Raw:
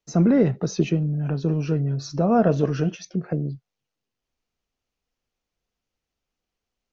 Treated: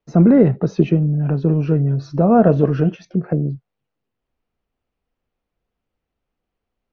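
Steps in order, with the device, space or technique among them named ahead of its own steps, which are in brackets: phone in a pocket (low-pass 3.7 kHz 12 dB/octave; treble shelf 2.1 kHz -10 dB); trim +6.5 dB

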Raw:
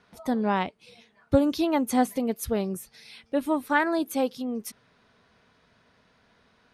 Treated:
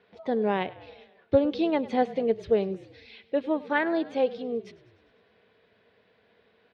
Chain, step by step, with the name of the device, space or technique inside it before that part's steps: frequency-shifting delay pedal into a guitar cabinet (frequency-shifting echo 101 ms, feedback 63%, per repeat -34 Hz, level -19 dB; cabinet simulation 110–3700 Hz, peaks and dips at 150 Hz -10 dB, 260 Hz -6 dB, 450 Hz +8 dB, 950 Hz -5 dB, 1.3 kHz -8 dB)

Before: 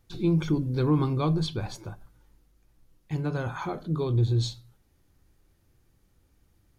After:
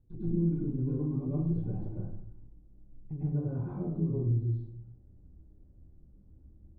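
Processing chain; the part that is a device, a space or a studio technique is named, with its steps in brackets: television next door (compression 4:1, threshold -37 dBFS, peak gain reduction 15 dB; low-pass 310 Hz 12 dB/octave; reverberation RT60 0.60 s, pre-delay 98 ms, DRR -8.5 dB)

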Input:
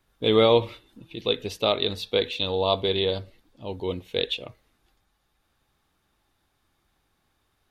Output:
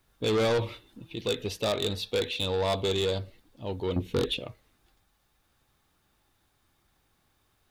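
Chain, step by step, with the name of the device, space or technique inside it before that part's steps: 3.96–4.39 s: resonant low shelf 460 Hz +11 dB, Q 1.5; open-reel tape (saturation -22 dBFS, distortion -7 dB; peaking EQ 110 Hz +2.5 dB 0.97 oct; white noise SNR 47 dB)

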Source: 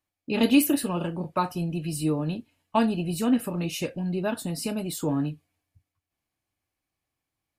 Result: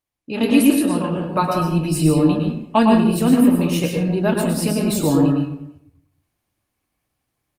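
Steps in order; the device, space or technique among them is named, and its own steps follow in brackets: speakerphone in a meeting room (reverberation RT60 0.70 s, pre-delay 103 ms, DRR 0.5 dB; speakerphone echo 340 ms, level -26 dB; level rider gain up to 8 dB; Opus 32 kbps 48 kHz)

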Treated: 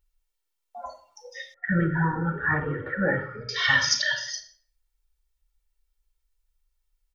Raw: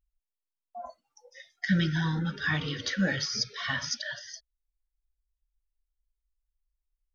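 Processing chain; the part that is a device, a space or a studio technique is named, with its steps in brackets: microphone above a desk (comb 2.2 ms, depth 61%; reverberation RT60 0.50 s, pre-delay 22 ms, DRR 6.5 dB); 1.54–3.49 s: steep low-pass 1.6 kHz 36 dB/octave; bass shelf 440 Hz -5 dB; trim +8 dB

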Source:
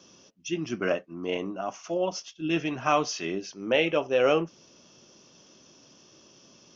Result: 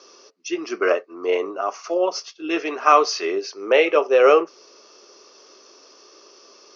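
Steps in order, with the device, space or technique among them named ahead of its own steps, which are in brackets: phone speaker on a table (cabinet simulation 360–6400 Hz, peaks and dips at 420 Hz +9 dB, 1.2 kHz +9 dB, 2.1 kHz +3 dB, 3.2 kHz -7 dB, 4.5 kHz +8 dB); trim +5.5 dB

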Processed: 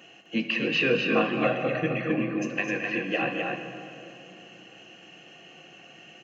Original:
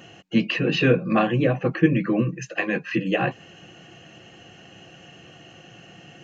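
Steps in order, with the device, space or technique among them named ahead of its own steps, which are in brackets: stadium PA (high-pass 230 Hz 12 dB/octave; peaking EQ 2.5 kHz +6 dB 0.42 oct; loudspeakers at several distances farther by 75 m -11 dB, 88 m -4 dB; reverberation RT60 2.9 s, pre-delay 13 ms, DRR 6.5 dB); 1.44–2.10 s: comb 1.5 ms, depth 54%; trim -6 dB

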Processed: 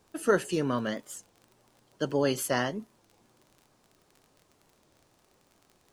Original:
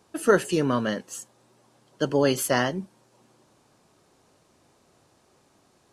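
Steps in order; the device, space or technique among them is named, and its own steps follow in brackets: warped LP (warped record 33 1/3 rpm, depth 250 cents; crackle 30 per s -39 dBFS; pink noise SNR 41 dB); trim -5 dB

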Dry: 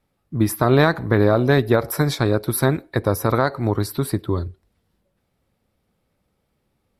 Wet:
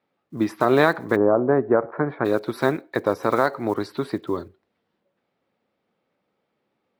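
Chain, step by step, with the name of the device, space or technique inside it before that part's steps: early digital voice recorder (band-pass 260–3400 Hz; block-companded coder 7-bit); 1.15–2.24 s: low-pass 1.1 kHz -> 1.8 kHz 24 dB/octave

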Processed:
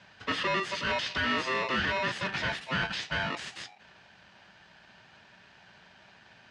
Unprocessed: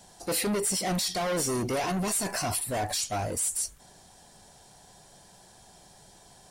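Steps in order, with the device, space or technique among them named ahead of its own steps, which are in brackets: ring modulator pedal into a guitar cabinet (polarity switched at an audio rate 780 Hz; cabinet simulation 82–4500 Hz, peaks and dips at 120 Hz +5 dB, 180 Hz +7 dB, 1.8 kHz +9 dB, 2.8 kHz +6 dB); trim -2.5 dB

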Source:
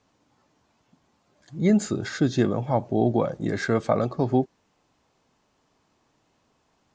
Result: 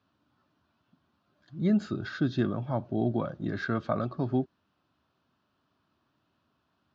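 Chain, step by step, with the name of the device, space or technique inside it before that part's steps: guitar cabinet (cabinet simulation 79–4300 Hz, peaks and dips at 81 Hz +6 dB, 470 Hz -10 dB, 820 Hz -7 dB, 1.4 kHz +5 dB, 2.1 kHz -9 dB); trim -4.5 dB

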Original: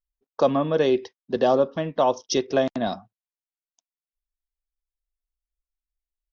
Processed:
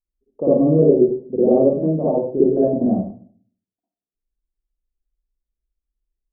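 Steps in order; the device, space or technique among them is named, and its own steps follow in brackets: next room (low-pass 490 Hz 24 dB/octave; reverberation RT60 0.50 s, pre-delay 48 ms, DRR -8.5 dB); 2.43–2.88 s: treble shelf 2.8 kHz +7.5 dB

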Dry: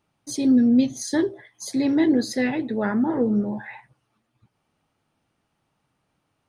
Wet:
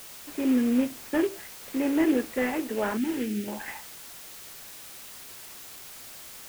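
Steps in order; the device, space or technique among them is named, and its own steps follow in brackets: army field radio (band-pass 330–3000 Hz; CVSD coder 16 kbps; white noise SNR 15 dB); 2.97–3.48 s: high-order bell 760 Hz -14.5 dB

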